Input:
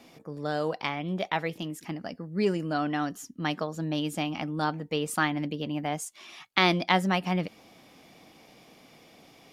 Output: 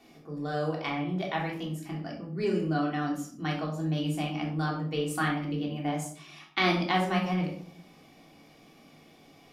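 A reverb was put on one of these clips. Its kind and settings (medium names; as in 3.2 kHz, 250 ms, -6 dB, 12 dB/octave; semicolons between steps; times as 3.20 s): simulated room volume 730 m³, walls furnished, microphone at 3.4 m; trim -7 dB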